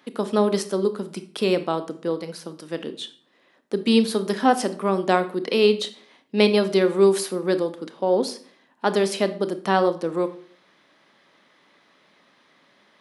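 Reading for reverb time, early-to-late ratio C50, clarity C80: 0.50 s, 13.5 dB, 18.0 dB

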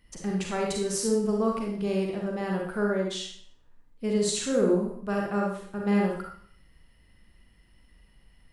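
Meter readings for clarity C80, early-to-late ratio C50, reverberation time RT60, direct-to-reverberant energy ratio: 6.0 dB, 1.5 dB, 0.55 s, -0.5 dB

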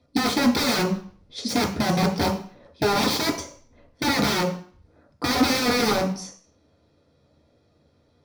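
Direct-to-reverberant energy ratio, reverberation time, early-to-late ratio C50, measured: -2.5 dB, 0.45 s, 8.0 dB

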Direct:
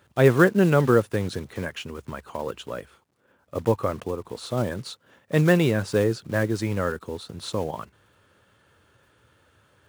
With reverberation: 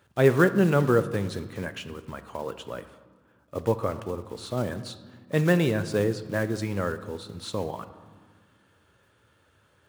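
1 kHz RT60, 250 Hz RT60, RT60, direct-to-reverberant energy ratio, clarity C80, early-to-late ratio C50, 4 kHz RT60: 1.6 s, 2.3 s, 1.6 s, 11.0 dB, 15.0 dB, 13.5 dB, 0.90 s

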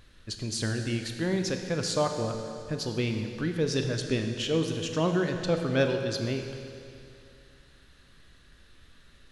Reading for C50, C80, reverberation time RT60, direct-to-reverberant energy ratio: 6.0 dB, 6.5 dB, 2.6 s, 4.5 dB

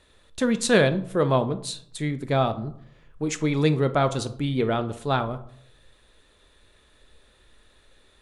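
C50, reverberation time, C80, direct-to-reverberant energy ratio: 14.5 dB, 0.70 s, 19.0 dB, 9.5 dB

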